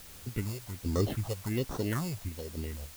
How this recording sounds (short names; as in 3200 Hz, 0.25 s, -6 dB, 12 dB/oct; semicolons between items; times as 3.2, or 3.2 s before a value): random-step tremolo, depth 55%; aliases and images of a low sample rate 2400 Hz, jitter 0%; phasing stages 4, 1.3 Hz, lowest notch 260–2700 Hz; a quantiser's noise floor 8-bit, dither triangular